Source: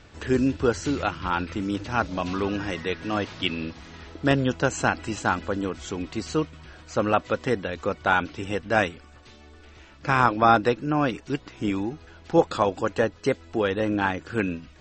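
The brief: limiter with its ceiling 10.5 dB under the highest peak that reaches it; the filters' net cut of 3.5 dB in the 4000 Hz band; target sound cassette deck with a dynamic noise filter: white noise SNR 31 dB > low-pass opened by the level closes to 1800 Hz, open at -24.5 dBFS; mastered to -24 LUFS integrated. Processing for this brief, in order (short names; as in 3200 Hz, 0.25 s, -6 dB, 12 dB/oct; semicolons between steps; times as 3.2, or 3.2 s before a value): bell 4000 Hz -5 dB; limiter -14.5 dBFS; white noise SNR 31 dB; low-pass opened by the level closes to 1800 Hz, open at -24.5 dBFS; gain +4.5 dB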